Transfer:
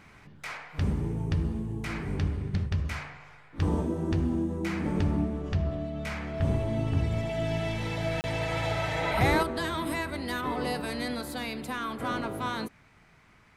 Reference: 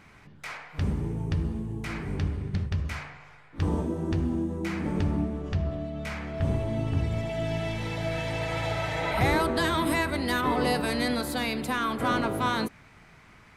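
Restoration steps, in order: interpolate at 8.21, 29 ms; gain correction +5.5 dB, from 9.43

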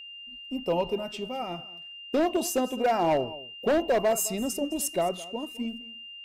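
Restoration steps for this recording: clip repair -19 dBFS; notch 2800 Hz, Q 30; inverse comb 0.213 s -19 dB

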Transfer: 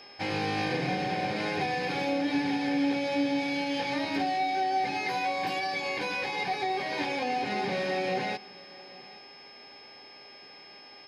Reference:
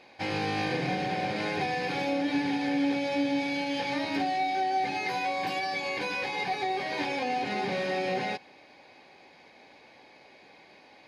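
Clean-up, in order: de-hum 404.6 Hz, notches 8; notch 5200 Hz, Q 30; inverse comb 0.829 s -22 dB

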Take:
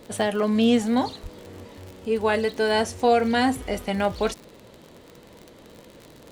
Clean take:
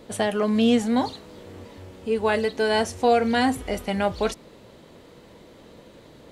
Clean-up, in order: de-click; de-plosive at 1.22

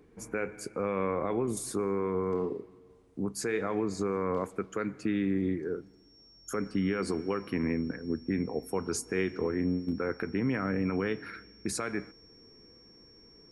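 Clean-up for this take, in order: notch 5500 Hz, Q 30

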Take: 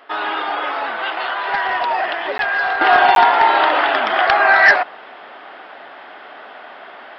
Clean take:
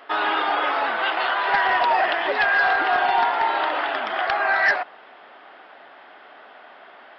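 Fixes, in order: interpolate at 2.38/3.15, 12 ms; gain correction -8.5 dB, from 2.81

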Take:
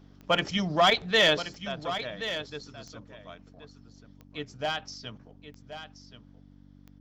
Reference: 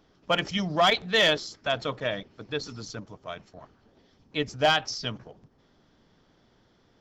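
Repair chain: de-click; de-hum 48 Hz, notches 6; inverse comb 1.077 s -11.5 dB; gain 0 dB, from 1.42 s +9 dB

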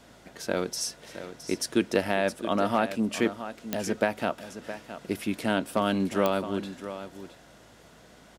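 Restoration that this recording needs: clip repair -11.5 dBFS; de-click; de-hum 54 Hz, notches 5; inverse comb 0.666 s -12 dB

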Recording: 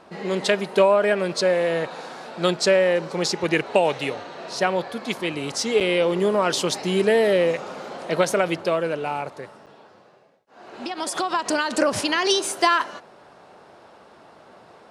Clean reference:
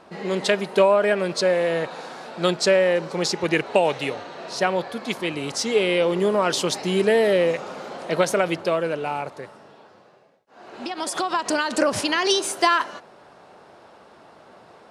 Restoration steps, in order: interpolate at 5.8/9.66, 7.9 ms

